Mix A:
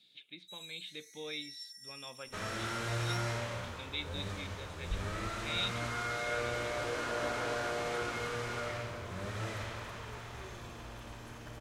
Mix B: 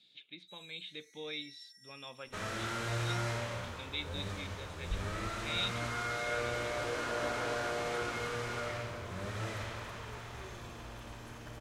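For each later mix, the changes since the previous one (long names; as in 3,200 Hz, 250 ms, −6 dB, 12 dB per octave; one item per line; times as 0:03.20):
first sound: add high-shelf EQ 4,100 Hz −12 dB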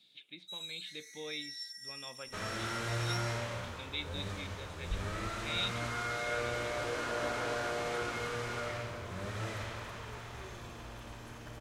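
first sound +11.5 dB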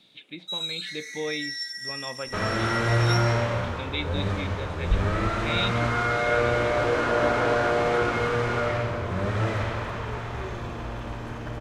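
first sound +7.5 dB
master: remove first-order pre-emphasis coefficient 0.8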